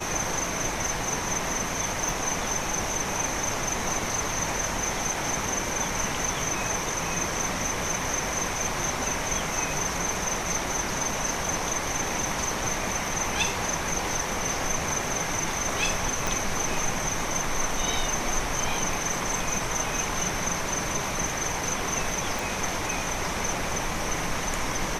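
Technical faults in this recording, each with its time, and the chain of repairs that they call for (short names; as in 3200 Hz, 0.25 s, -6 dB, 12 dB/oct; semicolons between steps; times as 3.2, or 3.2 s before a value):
2.09 pop
16.27 pop
22.39 pop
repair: de-click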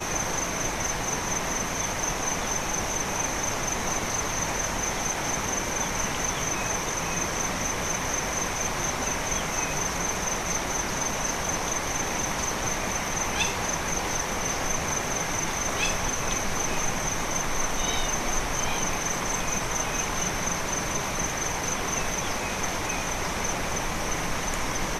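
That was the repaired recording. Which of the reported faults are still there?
2.09 pop
16.27 pop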